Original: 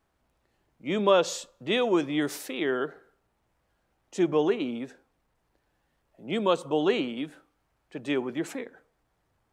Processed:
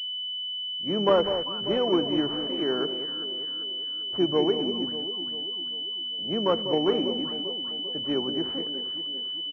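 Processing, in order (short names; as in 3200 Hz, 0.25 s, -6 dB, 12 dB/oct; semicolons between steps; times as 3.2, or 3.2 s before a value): harmoniser -4 st -15 dB; echo with dull and thin repeats by turns 0.197 s, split 880 Hz, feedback 71%, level -8 dB; pulse-width modulation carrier 3000 Hz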